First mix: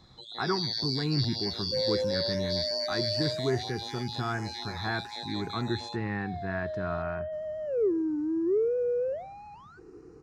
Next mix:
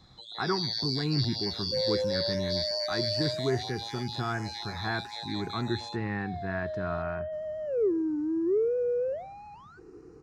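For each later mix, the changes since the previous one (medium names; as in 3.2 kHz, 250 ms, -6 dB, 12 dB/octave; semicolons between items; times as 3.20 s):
first sound: add high-pass 490 Hz 24 dB/octave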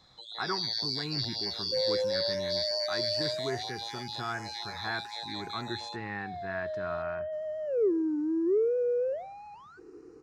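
speech: add bass shelf 500 Hz -10 dB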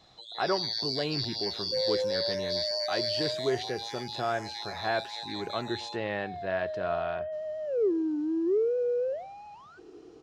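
speech: remove static phaser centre 1.4 kHz, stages 4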